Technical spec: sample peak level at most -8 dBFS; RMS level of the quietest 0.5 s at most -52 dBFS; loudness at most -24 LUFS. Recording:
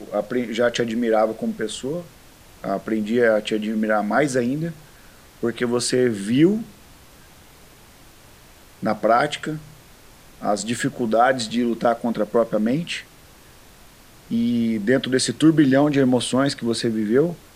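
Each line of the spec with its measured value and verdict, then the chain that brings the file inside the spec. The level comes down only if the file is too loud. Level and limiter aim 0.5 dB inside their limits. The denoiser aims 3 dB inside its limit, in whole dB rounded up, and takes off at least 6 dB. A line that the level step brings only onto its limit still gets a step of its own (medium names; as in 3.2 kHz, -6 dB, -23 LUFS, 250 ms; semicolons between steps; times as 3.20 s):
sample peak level -5.0 dBFS: fail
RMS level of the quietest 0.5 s -48 dBFS: fail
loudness -21.0 LUFS: fail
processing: noise reduction 6 dB, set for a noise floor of -48 dBFS; trim -3.5 dB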